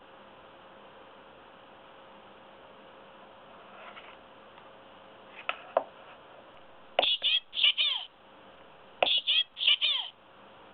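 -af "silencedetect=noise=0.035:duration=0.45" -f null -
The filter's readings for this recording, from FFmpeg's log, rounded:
silence_start: 0.00
silence_end: 5.49 | silence_duration: 5.49
silence_start: 5.79
silence_end: 6.99 | silence_duration: 1.19
silence_start: 8.01
silence_end: 9.02 | silence_duration: 1.02
silence_start: 10.03
silence_end: 10.74 | silence_duration: 0.70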